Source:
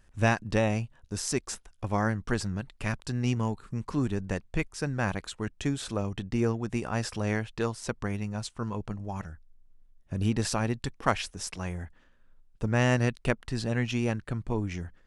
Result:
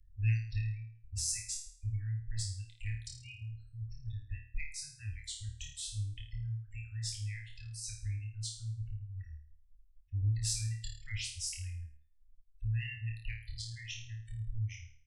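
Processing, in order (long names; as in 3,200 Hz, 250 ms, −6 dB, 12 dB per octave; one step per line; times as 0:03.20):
reverb reduction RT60 1.3 s
gate on every frequency bin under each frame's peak −20 dB strong
Chebyshev band-stop filter 100–2,000 Hz, order 5
bass and treble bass +11 dB, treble +9 dB
in parallel at −10 dB: soft clipping −23 dBFS, distortion −13 dB
on the sum: flanger 0.47 Hz, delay 7.8 ms, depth 4.7 ms, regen +60%
on a send: flutter between parallel walls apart 4.6 metres, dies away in 0.5 s
on the sum: level −7 dB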